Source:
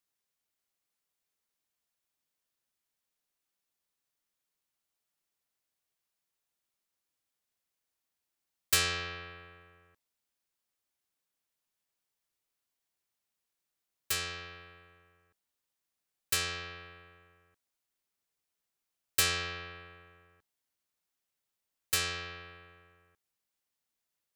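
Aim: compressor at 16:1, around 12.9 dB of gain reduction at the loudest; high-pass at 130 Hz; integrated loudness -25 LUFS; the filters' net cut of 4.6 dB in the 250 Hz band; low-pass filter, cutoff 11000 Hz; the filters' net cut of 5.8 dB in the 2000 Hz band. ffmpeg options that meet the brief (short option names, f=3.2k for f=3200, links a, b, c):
-af "highpass=130,lowpass=11k,equalizer=f=250:t=o:g=-7.5,equalizer=f=2k:t=o:g=-7.5,acompressor=threshold=-38dB:ratio=16,volume=20dB"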